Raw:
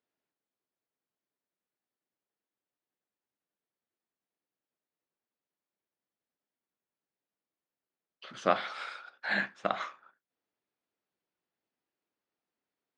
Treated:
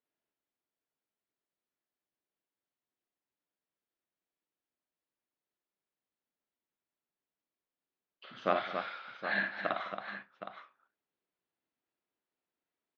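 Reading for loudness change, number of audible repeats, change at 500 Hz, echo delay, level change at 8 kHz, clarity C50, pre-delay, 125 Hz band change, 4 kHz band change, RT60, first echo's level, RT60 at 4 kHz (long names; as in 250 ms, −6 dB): −2.0 dB, 4, −1.5 dB, 56 ms, below −15 dB, no reverb audible, no reverb audible, −2.5 dB, −3.0 dB, no reverb audible, −5.0 dB, no reverb audible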